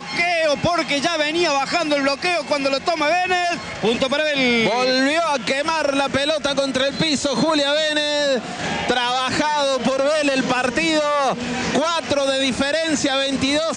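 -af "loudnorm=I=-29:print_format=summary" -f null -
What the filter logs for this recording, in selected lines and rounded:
Input Integrated:    -19.0 LUFS
Input True Peak:      -7.1 dBTP
Input LRA:             0.8 LU
Input Threshold:     -29.0 LUFS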